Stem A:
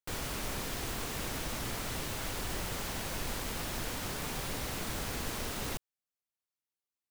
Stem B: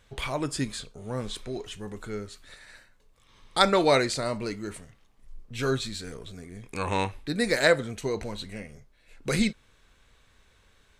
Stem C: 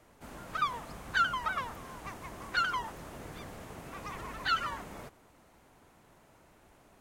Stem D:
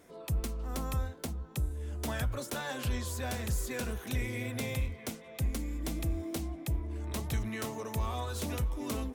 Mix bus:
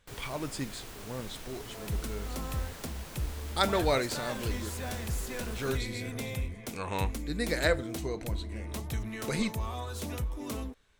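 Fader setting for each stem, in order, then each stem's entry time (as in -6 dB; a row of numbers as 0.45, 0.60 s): -8.5 dB, -6.5 dB, off, -1.5 dB; 0.00 s, 0.00 s, off, 1.60 s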